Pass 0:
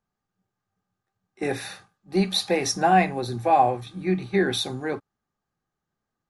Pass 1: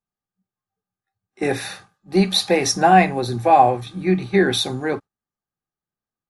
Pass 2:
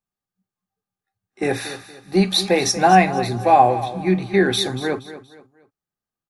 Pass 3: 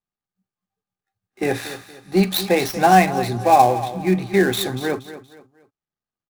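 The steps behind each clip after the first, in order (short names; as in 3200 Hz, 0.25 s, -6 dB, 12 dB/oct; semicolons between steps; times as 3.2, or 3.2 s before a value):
spectral noise reduction 15 dB; gain +5.5 dB
feedback echo 0.236 s, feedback 34%, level -14 dB
switching dead time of 0.058 ms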